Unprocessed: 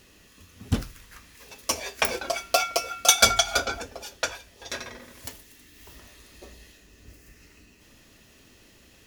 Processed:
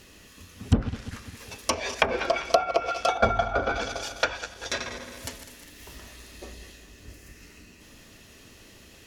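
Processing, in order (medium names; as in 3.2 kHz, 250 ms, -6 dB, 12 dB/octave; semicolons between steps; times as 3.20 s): backward echo that repeats 101 ms, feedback 71%, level -12.5 dB; low-pass that closes with the level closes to 980 Hz, closed at -20 dBFS; trim +4 dB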